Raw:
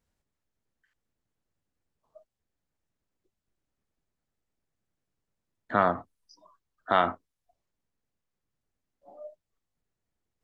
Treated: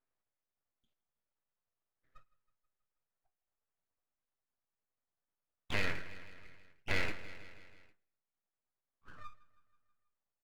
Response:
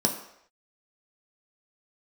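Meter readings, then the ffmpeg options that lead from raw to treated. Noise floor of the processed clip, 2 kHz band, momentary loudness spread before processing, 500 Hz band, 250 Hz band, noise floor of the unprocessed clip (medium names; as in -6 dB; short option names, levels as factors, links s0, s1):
under -85 dBFS, -3.0 dB, 5 LU, -15.5 dB, -11.5 dB, -85 dBFS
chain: -filter_complex "[0:a]asoftclip=type=tanh:threshold=0.0841,adynamicsmooth=sensitivity=7.5:basefreq=850,highpass=470,equalizer=f=590:t=q:w=4:g=-8,equalizer=f=840:t=q:w=4:g=4,equalizer=f=1200:t=q:w=4:g=4,equalizer=f=2200:t=q:w=4:g=4,equalizer=f=3400:t=q:w=4:g=5,lowpass=f=4100:w=0.5412,lowpass=f=4100:w=1.3066,asplit=2[s0][s1];[1:a]atrim=start_sample=2205[s2];[s1][s2]afir=irnorm=-1:irlink=0,volume=0.0501[s3];[s0][s3]amix=inputs=2:normalize=0,aeval=exprs='abs(val(0))':c=same,flanger=delay=7.5:depth=6.3:regen=63:speed=0.45:shape=sinusoidal,aecho=1:1:161|322|483|644|805:0.0944|0.0566|0.034|0.0204|0.0122,acompressor=threshold=0.0141:ratio=2.5,volume=2.24"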